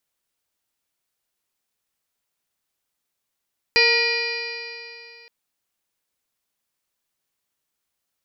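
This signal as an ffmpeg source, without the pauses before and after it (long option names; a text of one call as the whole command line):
ffmpeg -f lavfi -i "aevalsrc='0.0891*pow(10,-3*t/2.72)*sin(2*PI*463.9*t)+0.0355*pow(10,-3*t/2.72)*sin(2*PI*933.19*t)+0.0188*pow(10,-3*t/2.72)*sin(2*PI*1413.17*t)+0.1*pow(10,-3*t/2.72)*sin(2*PI*1908.91*t)+0.158*pow(10,-3*t/2.72)*sin(2*PI*2425.23*t)+0.0282*pow(10,-3*t/2.72)*sin(2*PI*2966.61*t)+0.0112*pow(10,-3*t/2.72)*sin(2*PI*3537.15*t)+0.0708*pow(10,-3*t/2.72)*sin(2*PI*4140.54*t)+0.126*pow(10,-3*t/2.72)*sin(2*PI*4780.08*t)+0.0335*pow(10,-3*t/2.72)*sin(2*PI*5458.69*t)':duration=1.52:sample_rate=44100" out.wav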